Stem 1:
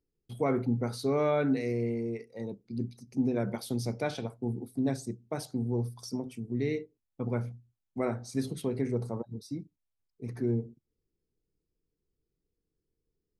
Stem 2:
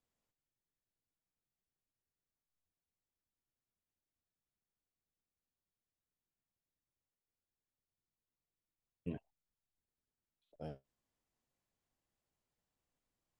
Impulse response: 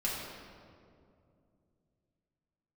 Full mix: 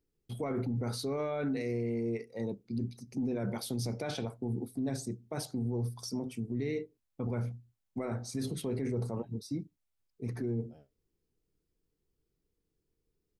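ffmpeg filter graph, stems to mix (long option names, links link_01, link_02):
-filter_complex "[0:a]volume=2dB[link_01];[1:a]adelay=100,volume=-12dB[link_02];[link_01][link_02]amix=inputs=2:normalize=0,alimiter=level_in=2.5dB:limit=-24dB:level=0:latency=1:release=16,volume=-2.5dB"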